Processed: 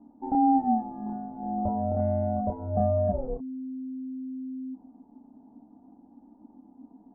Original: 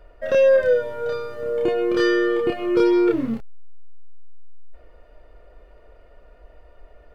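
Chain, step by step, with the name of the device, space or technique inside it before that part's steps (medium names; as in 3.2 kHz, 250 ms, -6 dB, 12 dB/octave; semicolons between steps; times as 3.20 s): inverse Chebyshev low-pass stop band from 3.1 kHz, stop band 70 dB; alien voice (ring modulator 260 Hz; flange 0.47 Hz, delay 3.3 ms, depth 1.5 ms, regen -58%)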